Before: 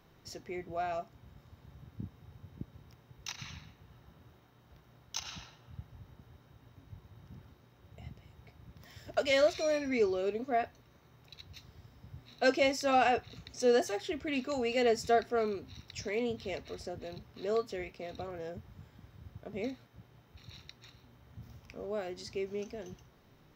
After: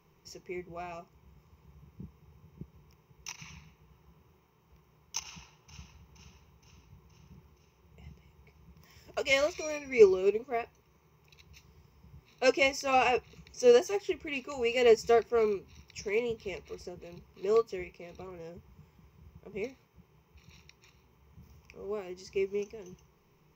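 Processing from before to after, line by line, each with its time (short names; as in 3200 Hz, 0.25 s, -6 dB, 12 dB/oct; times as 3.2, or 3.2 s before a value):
5.21–6.09 echo throw 0.47 s, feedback 60%, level -7 dB
whole clip: ripple EQ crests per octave 0.77, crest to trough 11 dB; upward expander 1.5:1, over -40 dBFS; gain +5.5 dB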